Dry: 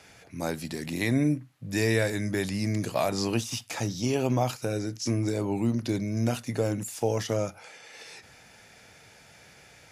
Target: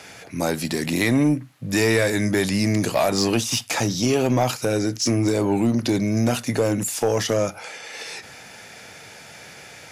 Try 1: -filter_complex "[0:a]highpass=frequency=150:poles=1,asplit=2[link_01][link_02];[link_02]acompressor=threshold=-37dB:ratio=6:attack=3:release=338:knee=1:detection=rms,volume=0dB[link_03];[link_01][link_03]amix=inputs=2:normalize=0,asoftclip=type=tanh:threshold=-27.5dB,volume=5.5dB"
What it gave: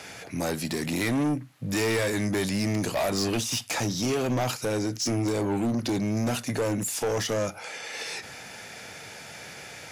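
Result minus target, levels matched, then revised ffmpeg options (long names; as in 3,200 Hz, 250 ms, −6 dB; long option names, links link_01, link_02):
downward compressor: peak gain reduction +9.5 dB; soft clipping: distortion +9 dB
-filter_complex "[0:a]highpass=frequency=150:poles=1,asplit=2[link_01][link_02];[link_02]acompressor=threshold=-25.5dB:ratio=6:attack=3:release=338:knee=1:detection=rms,volume=0dB[link_03];[link_01][link_03]amix=inputs=2:normalize=0,asoftclip=type=tanh:threshold=-16.5dB,volume=5.5dB"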